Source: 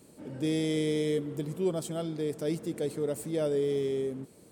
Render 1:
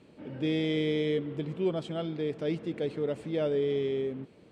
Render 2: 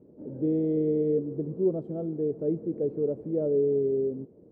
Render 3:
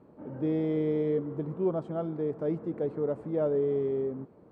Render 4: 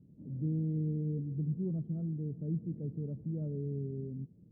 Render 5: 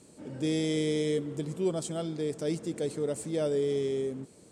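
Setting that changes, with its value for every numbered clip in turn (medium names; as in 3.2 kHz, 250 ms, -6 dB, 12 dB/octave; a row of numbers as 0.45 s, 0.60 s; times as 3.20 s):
resonant low-pass, frequency: 2.9 kHz, 450 Hz, 1.1 kHz, 160 Hz, 7.7 kHz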